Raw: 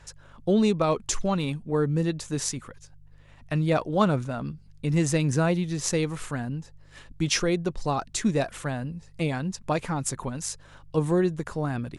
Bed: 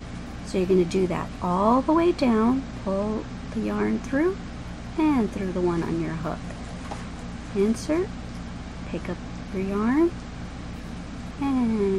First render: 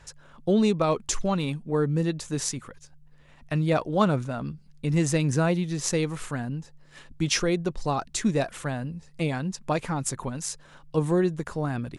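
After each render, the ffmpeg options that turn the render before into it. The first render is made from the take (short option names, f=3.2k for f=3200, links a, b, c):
-af "bandreject=f=50:t=h:w=4,bandreject=f=100:t=h:w=4"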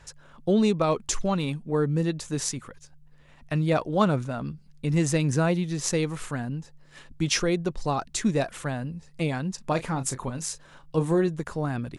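-filter_complex "[0:a]asettb=1/sr,asplit=3[a][b][c];[a]atrim=end=9.554[d];[b]atrim=start=9.55:end=11.28,asetpts=PTS-STARTPTS,afade=t=in:d=0.004:c=qsin,afade=t=out:st=1.726:d=0.004:c=qsin,asplit=2[e][f];[f]adelay=31,volume=-12dB[g];[e][g]amix=inputs=2:normalize=0,atrim=end_sample=76293[h];[c]atrim=start=11.276[i];[d][h]acrossfade=d=0.004:c1=hsin:c2=qsin[j];[j][i]acrossfade=d=0.004:c1=qsin:c2=hsin"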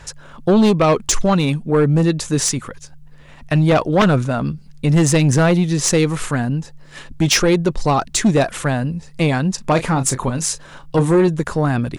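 -af "aeval=exprs='0.376*sin(PI/2*2.51*val(0)/0.376)':c=same"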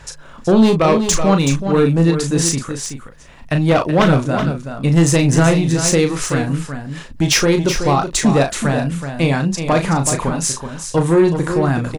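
-filter_complex "[0:a]asplit=2[a][b];[b]adelay=36,volume=-7dB[c];[a][c]amix=inputs=2:normalize=0,aecho=1:1:376:0.376"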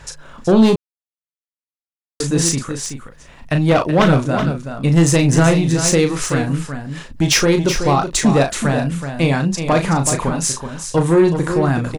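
-filter_complex "[0:a]asplit=3[a][b][c];[a]atrim=end=0.76,asetpts=PTS-STARTPTS,afade=t=out:st=0.756:d=0.004:c=hsin[d];[b]atrim=start=0.76:end=2.2,asetpts=PTS-STARTPTS,volume=0[e];[c]atrim=start=2.2,asetpts=PTS-STARTPTS,afade=t=in:d=0.004:c=hsin[f];[d][e][f]concat=n=3:v=0:a=1"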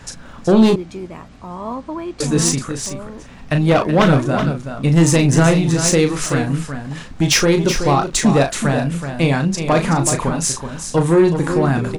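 -filter_complex "[1:a]volume=-7dB[a];[0:a][a]amix=inputs=2:normalize=0"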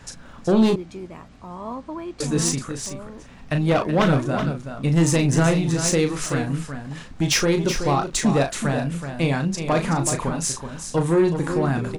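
-af "volume=-5.5dB"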